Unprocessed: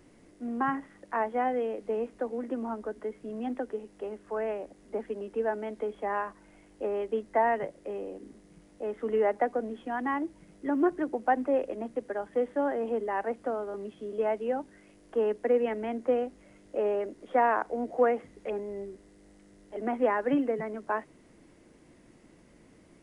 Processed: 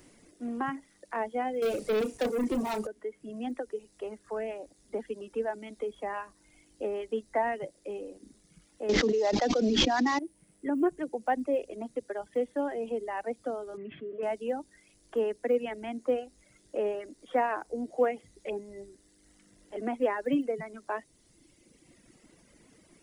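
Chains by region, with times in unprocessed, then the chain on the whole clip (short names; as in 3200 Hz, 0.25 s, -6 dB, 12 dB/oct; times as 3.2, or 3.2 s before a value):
1.62–2.87 flutter echo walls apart 5.6 m, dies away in 0.27 s + sample leveller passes 3
8.89–10.19 CVSD 32 kbps + air absorption 50 m + fast leveller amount 100%
13.77–14.23 speaker cabinet 110–2200 Hz, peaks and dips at 210 Hz -5 dB, 300 Hz -9 dB, 500 Hz -9 dB, 860 Hz -10 dB + fast leveller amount 50%
whole clip: high shelf 3100 Hz +11 dB; reverb removal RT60 1.5 s; dynamic EQ 1300 Hz, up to -7 dB, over -43 dBFS, Q 0.89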